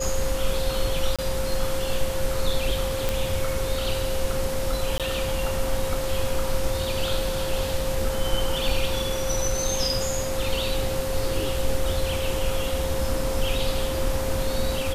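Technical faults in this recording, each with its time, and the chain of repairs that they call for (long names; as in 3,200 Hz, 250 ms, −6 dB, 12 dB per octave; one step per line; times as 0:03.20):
whistle 530 Hz −28 dBFS
0:01.16–0:01.19: drop-out 26 ms
0:03.09: click
0:04.98–0:05.00: drop-out 17 ms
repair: click removal
notch filter 530 Hz, Q 30
repair the gap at 0:01.16, 26 ms
repair the gap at 0:04.98, 17 ms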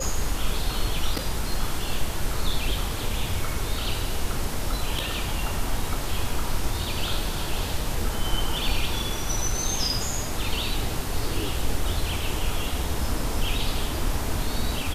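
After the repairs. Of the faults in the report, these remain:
none of them is left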